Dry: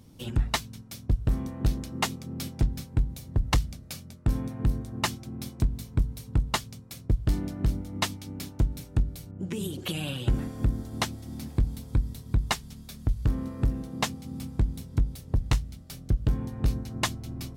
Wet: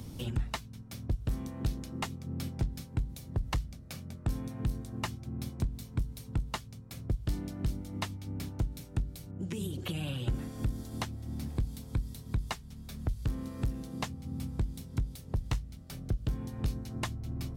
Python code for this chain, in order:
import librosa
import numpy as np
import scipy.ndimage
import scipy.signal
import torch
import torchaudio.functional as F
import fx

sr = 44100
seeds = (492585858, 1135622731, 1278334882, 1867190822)

y = fx.band_squash(x, sr, depth_pct=70)
y = y * 10.0 ** (-7.0 / 20.0)